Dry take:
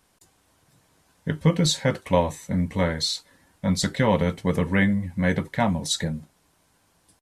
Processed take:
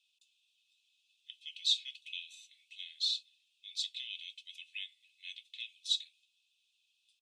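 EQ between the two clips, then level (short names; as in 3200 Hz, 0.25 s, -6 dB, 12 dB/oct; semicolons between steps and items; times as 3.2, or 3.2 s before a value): rippled Chebyshev high-pass 2500 Hz, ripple 9 dB; air absorption 240 m; +8.0 dB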